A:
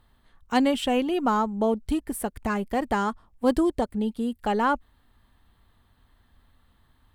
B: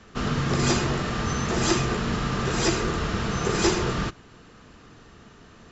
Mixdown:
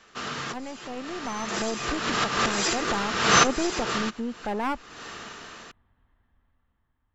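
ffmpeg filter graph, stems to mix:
-filter_complex "[0:a]lowpass=f=2.7k:w=0.5412,lowpass=f=2.7k:w=1.3066,aeval=exprs='clip(val(0),-1,0.0355)':c=same,volume=-14dB,asplit=2[a][b];[1:a]highpass=f=1k:p=1,alimiter=limit=-23.5dB:level=0:latency=1:release=289,dynaudnorm=f=280:g=7:m=8dB,volume=0dB[c];[b]apad=whole_len=251988[d];[c][d]sidechaincompress=threshold=-53dB:ratio=5:attack=7.2:release=263[e];[a][e]amix=inputs=2:normalize=0,dynaudnorm=f=430:g=7:m=11.5dB"

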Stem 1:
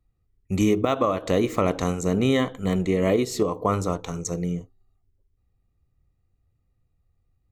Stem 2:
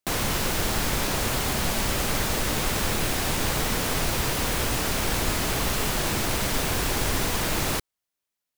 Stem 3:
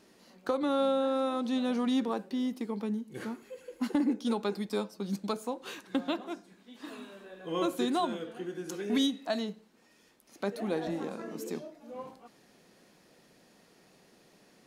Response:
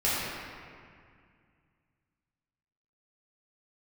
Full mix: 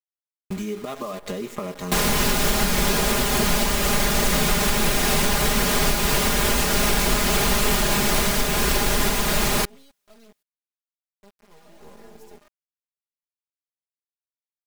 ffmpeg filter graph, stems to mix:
-filter_complex "[0:a]volume=-6dB[a];[1:a]adelay=1850,volume=0dB[b];[2:a]equalizer=f=500:t=o:w=0.77:g=7,aeval=exprs='val(0)*pow(10,-19*(0.5-0.5*cos(2*PI*0.71*n/s))/20)':c=same,adelay=800,volume=-13dB[c];[a][c]amix=inputs=2:normalize=0,acrusher=bits=7:dc=4:mix=0:aa=0.000001,acompressor=threshold=-35dB:ratio=6,volume=0dB[d];[b][d]amix=inputs=2:normalize=0,aecho=1:1:4.9:0.91,dynaudnorm=f=180:g=3:m=5dB,alimiter=limit=-9dB:level=0:latency=1:release=341"

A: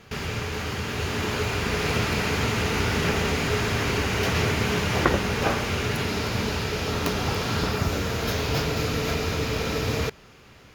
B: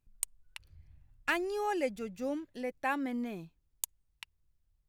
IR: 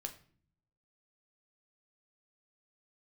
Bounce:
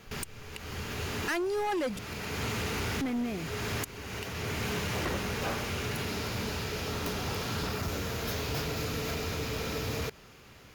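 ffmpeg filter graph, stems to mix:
-filter_complex "[0:a]highshelf=f=9.5k:g=9,volume=-10.5dB[a];[1:a]volume=2.5dB,asplit=3[b][c][d];[b]atrim=end=1.99,asetpts=PTS-STARTPTS,afade=t=out:st=1.986:d=0.004:c=hsin[e];[c]atrim=start=1.99:end=3.01,asetpts=PTS-STARTPTS,volume=0[f];[d]atrim=start=3.01,asetpts=PTS-STARTPTS,afade=t=in:d=0.004:c=hsin[g];[e][f][g]concat=n=3:v=0:a=1,asplit=2[h][i];[i]apad=whole_len=474014[j];[a][j]sidechaincompress=threshold=-43dB:ratio=6:attack=5.2:release=438[k];[k][h]amix=inputs=2:normalize=0,acontrast=87,volume=24dB,asoftclip=hard,volume=-24dB,alimiter=level_in=4dB:limit=-24dB:level=0:latency=1:release=66,volume=-4dB"

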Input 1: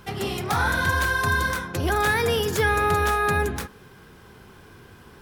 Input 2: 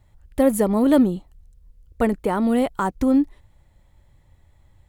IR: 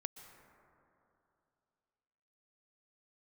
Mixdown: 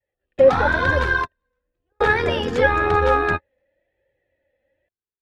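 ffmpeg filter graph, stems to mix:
-filter_complex "[0:a]tremolo=f=81:d=0.571,volume=1dB[a];[1:a]adynamicequalizer=threshold=0.0316:dfrequency=390:dqfactor=1.8:tfrequency=390:tqfactor=1.8:attack=5:release=100:ratio=0.375:range=2:mode=cutabove:tftype=bell,asplit=3[b][c][d];[b]bandpass=f=530:t=q:w=8,volume=0dB[e];[c]bandpass=f=1.84k:t=q:w=8,volume=-6dB[f];[d]bandpass=f=2.48k:t=q:w=8,volume=-9dB[g];[e][f][g]amix=inputs=3:normalize=0,volume=0.5dB,asplit=2[h][i];[i]apad=whole_len=230036[j];[a][j]sidechaingate=range=-59dB:threshold=-50dB:ratio=16:detection=peak[k];[k][h]amix=inputs=2:normalize=0,lowpass=3.1k,dynaudnorm=f=160:g=3:m=10dB,flanger=delay=2.1:depth=1.9:regen=28:speed=0.98:shape=triangular"

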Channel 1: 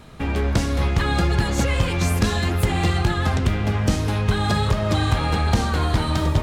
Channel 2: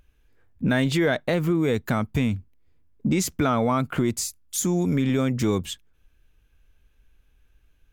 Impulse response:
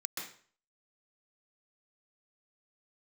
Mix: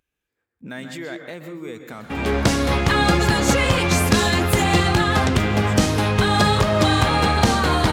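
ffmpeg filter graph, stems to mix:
-filter_complex "[0:a]dynaudnorm=f=220:g=3:m=11.5dB,adelay=1900,volume=-1.5dB[a];[1:a]volume=-11.5dB,asplit=2[b][c];[c]volume=-4dB[d];[2:a]atrim=start_sample=2205[e];[d][e]afir=irnorm=-1:irlink=0[f];[a][b][f]amix=inputs=3:normalize=0,highpass=f=190:p=1"

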